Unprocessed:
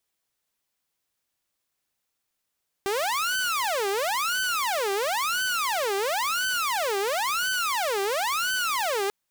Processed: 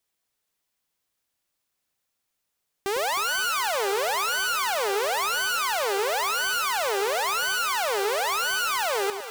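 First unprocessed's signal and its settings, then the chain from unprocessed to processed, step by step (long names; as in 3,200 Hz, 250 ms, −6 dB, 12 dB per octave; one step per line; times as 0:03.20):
siren wail 391–1,520 Hz 0.97 per second saw −21.5 dBFS 6.24 s
delay that swaps between a low-pass and a high-pass 104 ms, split 850 Hz, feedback 73%, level −7.5 dB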